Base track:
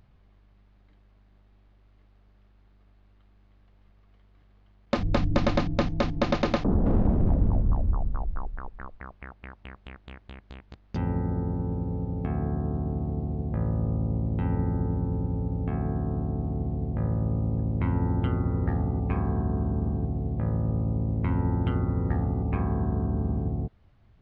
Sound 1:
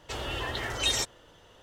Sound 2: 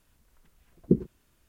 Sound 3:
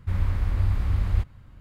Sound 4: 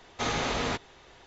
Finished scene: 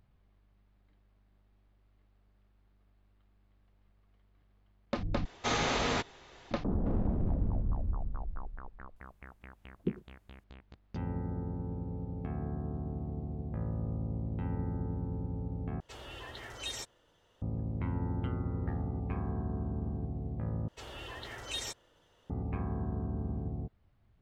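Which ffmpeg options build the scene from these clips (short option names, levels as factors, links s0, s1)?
-filter_complex "[1:a]asplit=2[s0][s1];[0:a]volume=0.376,asplit=4[s2][s3][s4][s5];[s2]atrim=end=5.254[s6];[4:a]atrim=end=1.26,asetpts=PTS-STARTPTS,volume=0.891[s7];[s3]atrim=start=6.506:end=15.804[s8];[s0]atrim=end=1.62,asetpts=PTS-STARTPTS,volume=0.237[s9];[s4]atrim=start=17.416:end=20.684[s10];[s1]atrim=end=1.62,asetpts=PTS-STARTPTS,volume=0.282[s11];[s5]atrim=start=22.296[s12];[2:a]atrim=end=1.48,asetpts=PTS-STARTPTS,volume=0.266,afade=t=in:d=0.004:c=hsin,afade=t=out:st=1.476:d=0.004:c=hsin,adelay=8960[s13];[s6][s7]acrossfade=d=0.004:c1=hsin:c2=hsin[s14];[s14][s8]acrossfade=d=0.004:c1=hsin:c2=hsin[s15];[s15][s9]acrossfade=d=0.004:c1=hsin:c2=hsin[s16];[s16][s10]acrossfade=d=0.004:c1=hsin:c2=hsin[s17];[s17][s11]acrossfade=d=0.004:c1=hsin:c2=hsin[s18];[s18][s12]acrossfade=d=0.004:c1=hsin:c2=hsin[s19];[s19][s13]amix=inputs=2:normalize=0"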